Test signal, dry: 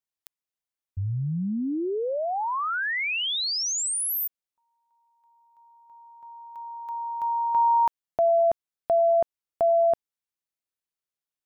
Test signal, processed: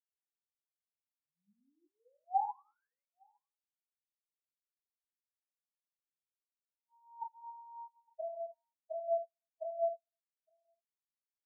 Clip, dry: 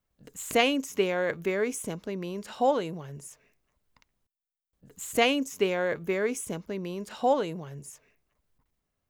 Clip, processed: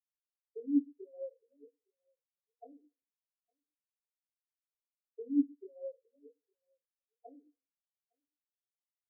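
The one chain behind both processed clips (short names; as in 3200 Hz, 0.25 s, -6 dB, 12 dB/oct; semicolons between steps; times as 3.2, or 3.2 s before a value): thirty-one-band EQ 125 Hz -5 dB, 400 Hz -5 dB, 630 Hz -6 dB; auto-wah 300–4100 Hz, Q 3.1, down, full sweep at -23 dBFS; echo 0.86 s -9 dB; non-linear reverb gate 0.42 s falling, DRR 0 dB; spectral expander 4:1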